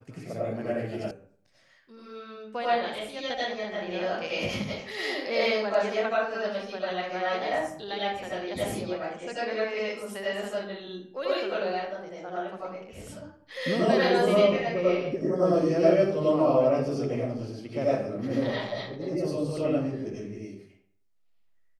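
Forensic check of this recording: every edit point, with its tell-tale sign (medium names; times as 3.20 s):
1.11 s: sound stops dead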